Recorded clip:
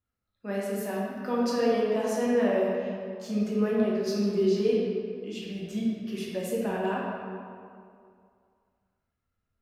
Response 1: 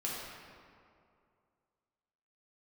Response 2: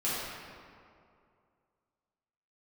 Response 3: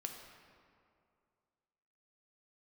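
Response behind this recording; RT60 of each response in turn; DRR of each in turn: 1; 2.4, 2.4, 2.4 s; -5.5, -10.5, 3.0 dB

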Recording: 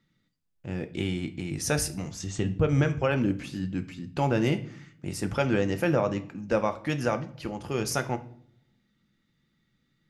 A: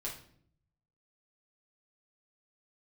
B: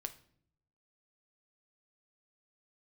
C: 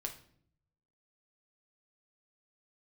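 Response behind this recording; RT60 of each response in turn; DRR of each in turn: B; 0.60, 0.60, 0.60 s; -4.5, 8.0, 3.0 dB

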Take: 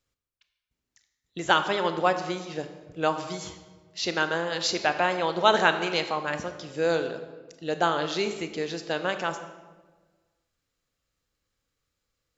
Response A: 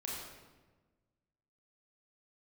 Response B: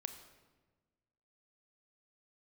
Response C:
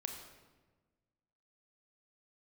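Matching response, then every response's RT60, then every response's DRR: B; 1.3, 1.3, 1.3 s; -4.5, 8.0, 3.5 dB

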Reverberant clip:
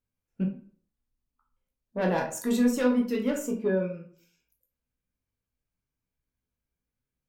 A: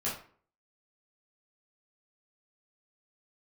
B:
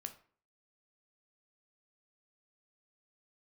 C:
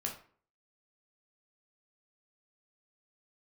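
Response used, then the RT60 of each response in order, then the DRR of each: C; 0.45, 0.45, 0.45 s; -8.0, 6.5, -0.5 dB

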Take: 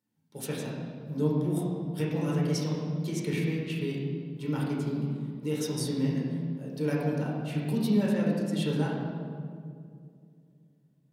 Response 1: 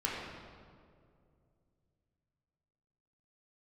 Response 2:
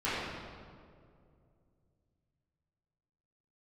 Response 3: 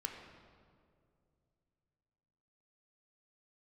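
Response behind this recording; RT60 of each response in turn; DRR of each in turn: 1; 2.3, 2.3, 2.3 s; -5.0, -13.5, 2.5 dB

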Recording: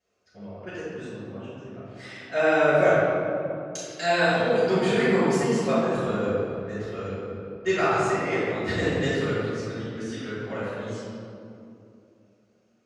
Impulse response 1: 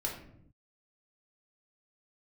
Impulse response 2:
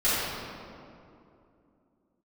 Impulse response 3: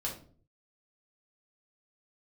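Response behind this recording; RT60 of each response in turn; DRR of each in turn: 2; 0.70, 2.7, 0.45 s; -2.5, -13.5, -3.5 dB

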